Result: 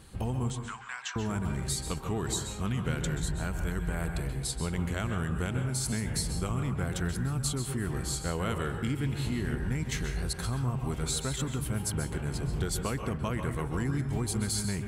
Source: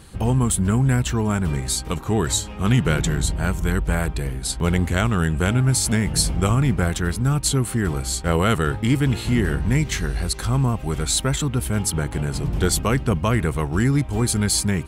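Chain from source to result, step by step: 0.5–1.16 Chebyshev band-pass 1000–6400 Hz, order 3; compressor, threshold -21 dBFS, peak gain reduction 8.5 dB; plate-style reverb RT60 0.61 s, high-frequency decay 0.45×, pre-delay 0.12 s, DRR 5.5 dB; gain -7.5 dB

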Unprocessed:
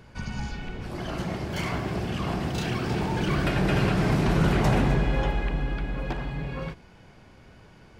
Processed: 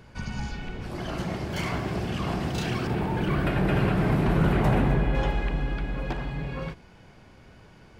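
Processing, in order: 2.87–5.15 bell 5900 Hz -11.5 dB 1.4 oct

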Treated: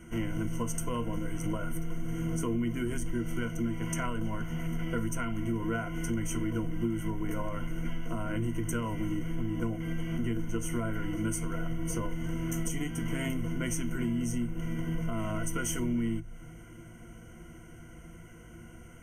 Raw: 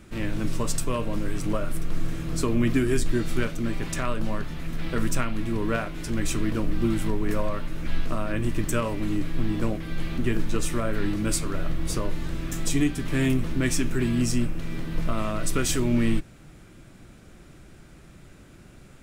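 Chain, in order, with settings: ripple EQ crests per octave 1.9, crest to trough 17 dB; compressor, threshold -25 dBFS, peak gain reduction 13 dB; Butterworth band-stop 4100 Hz, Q 1.8; gain -3 dB

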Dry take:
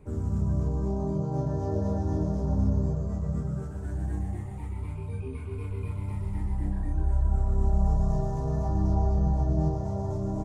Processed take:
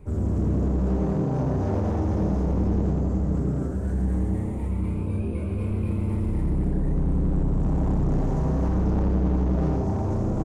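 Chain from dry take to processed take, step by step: low shelf 120 Hz +6.5 dB; hard clip -24 dBFS, distortion -6 dB; on a send: frequency-shifting echo 81 ms, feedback 44%, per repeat +120 Hz, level -6 dB; on the sum: gain +2.5 dB

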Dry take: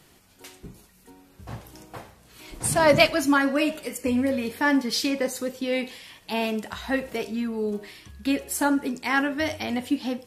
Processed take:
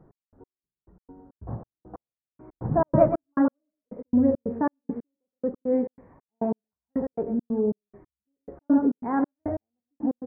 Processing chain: on a send: echo 0.121 s -8.5 dB; on the sum: step gate "x..x....x.xx.x" 138 bpm -60 dB; Gaussian blur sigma 8.9 samples; gain +4 dB

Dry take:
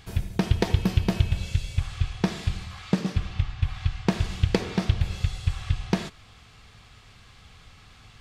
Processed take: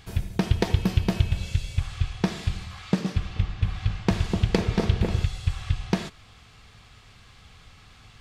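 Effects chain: 3.11–5.24 repeats that get brighter 0.25 s, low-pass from 750 Hz, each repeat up 1 oct, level -3 dB

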